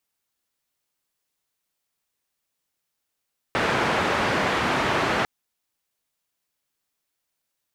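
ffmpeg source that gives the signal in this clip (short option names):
-f lavfi -i "anoisesrc=c=white:d=1.7:r=44100:seed=1,highpass=f=87,lowpass=f=1600,volume=-7dB"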